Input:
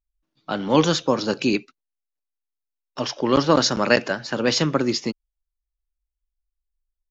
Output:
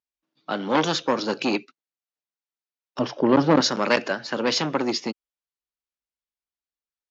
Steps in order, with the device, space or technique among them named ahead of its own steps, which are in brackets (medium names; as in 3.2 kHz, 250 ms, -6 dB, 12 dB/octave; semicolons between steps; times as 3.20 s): public-address speaker with an overloaded transformer (transformer saturation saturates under 1.2 kHz; band-pass 200–6100 Hz); 2.99–3.61 s: tilt EQ -3.5 dB/octave